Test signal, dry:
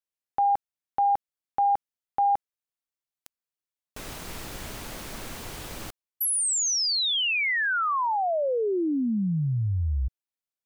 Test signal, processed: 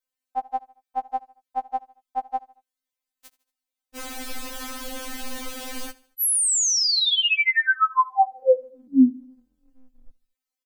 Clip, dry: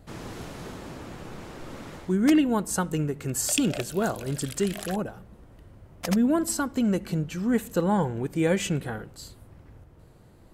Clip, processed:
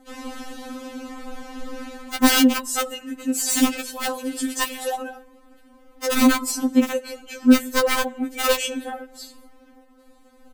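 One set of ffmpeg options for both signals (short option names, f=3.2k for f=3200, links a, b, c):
-af "aecho=1:1:76|152|228:0.0841|0.0395|0.0186,aeval=exprs='(mod(6.68*val(0)+1,2)-1)/6.68':c=same,afftfilt=real='re*3.46*eq(mod(b,12),0)':imag='im*3.46*eq(mod(b,12),0)':win_size=2048:overlap=0.75,volume=6.5dB"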